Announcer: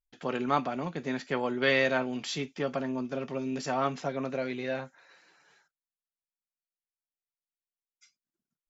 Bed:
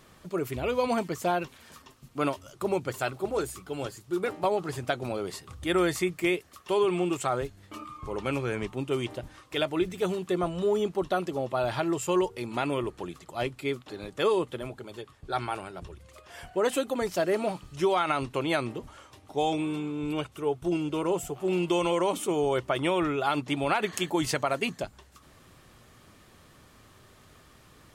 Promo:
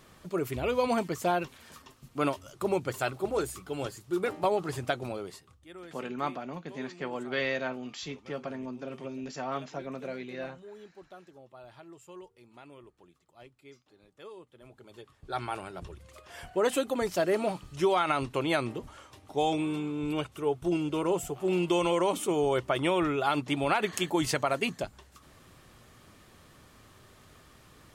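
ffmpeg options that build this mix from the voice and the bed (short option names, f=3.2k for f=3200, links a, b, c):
-filter_complex "[0:a]adelay=5700,volume=-5.5dB[a];[1:a]volume=21dB,afade=t=out:st=4.85:d=0.76:silence=0.0841395,afade=t=in:st=14.54:d=1.23:silence=0.0841395[b];[a][b]amix=inputs=2:normalize=0"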